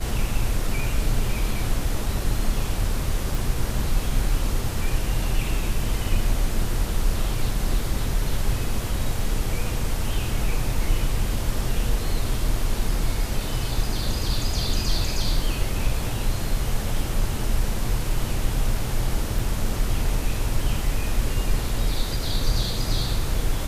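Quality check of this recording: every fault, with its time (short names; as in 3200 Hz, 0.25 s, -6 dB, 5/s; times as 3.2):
3.35 pop
19.39 gap 2.8 ms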